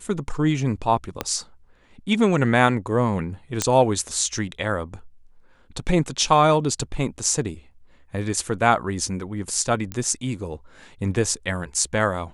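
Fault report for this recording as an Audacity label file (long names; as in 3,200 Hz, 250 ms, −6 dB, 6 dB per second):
1.210000	1.210000	click −9 dBFS
3.620000	3.620000	click −6 dBFS
9.920000	9.920000	click −15 dBFS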